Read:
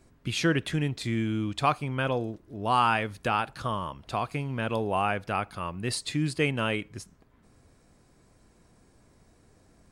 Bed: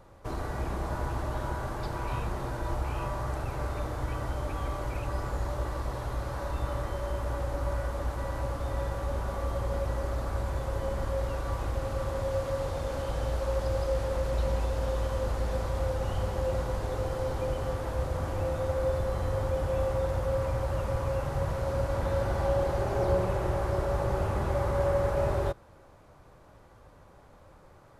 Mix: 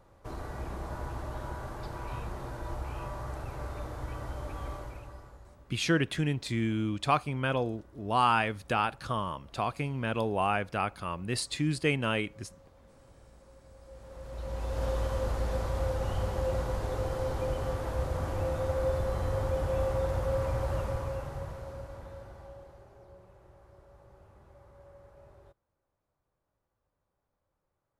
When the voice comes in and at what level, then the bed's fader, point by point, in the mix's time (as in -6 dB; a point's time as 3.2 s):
5.45 s, -1.5 dB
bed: 4.73 s -5.5 dB
5.67 s -27 dB
13.7 s -27 dB
14.83 s -1 dB
20.76 s -1 dB
23.08 s -28 dB